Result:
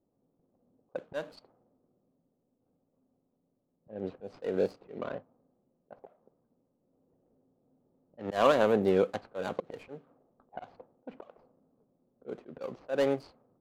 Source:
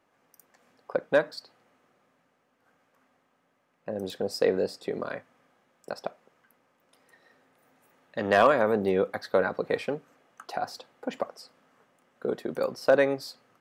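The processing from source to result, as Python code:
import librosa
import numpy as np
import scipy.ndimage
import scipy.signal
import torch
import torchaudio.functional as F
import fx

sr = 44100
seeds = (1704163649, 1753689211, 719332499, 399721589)

y = scipy.signal.medfilt(x, 25)
y = fx.env_lowpass(y, sr, base_hz=380.0, full_db=-24.5)
y = fx.auto_swell(y, sr, attack_ms=194.0)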